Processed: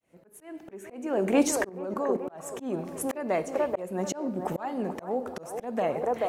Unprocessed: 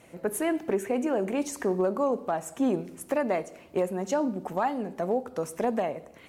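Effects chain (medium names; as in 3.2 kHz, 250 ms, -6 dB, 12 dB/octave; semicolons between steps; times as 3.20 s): fade-in on the opening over 1.49 s; 1.69–2.39 s: level held to a coarse grid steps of 17 dB; feedback echo behind a band-pass 434 ms, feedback 42%, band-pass 720 Hz, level -7 dB; slow attack 496 ms; trim +7.5 dB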